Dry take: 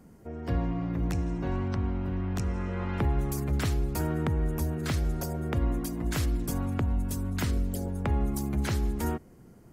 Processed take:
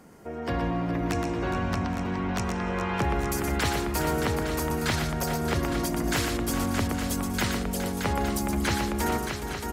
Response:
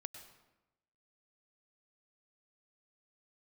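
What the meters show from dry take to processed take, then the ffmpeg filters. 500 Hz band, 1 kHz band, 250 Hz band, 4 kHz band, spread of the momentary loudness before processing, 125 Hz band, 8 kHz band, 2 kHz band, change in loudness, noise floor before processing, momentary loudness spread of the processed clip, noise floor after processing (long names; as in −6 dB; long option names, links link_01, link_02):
+6.0 dB, +9.5 dB, +3.5 dB, +10.0 dB, 3 LU, −1.5 dB, +8.0 dB, +10.0 dB, +2.5 dB, −53 dBFS, 3 LU, −34 dBFS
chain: -filter_complex "[0:a]aecho=1:1:120|415|622|822|861:0.473|0.282|0.447|0.126|0.299,asplit=2[link_01][link_02];[link_02]highpass=frequency=720:poles=1,volume=15dB,asoftclip=type=tanh:threshold=-14.5dB[link_03];[link_01][link_03]amix=inputs=2:normalize=0,lowpass=frequency=7000:poles=1,volume=-6dB"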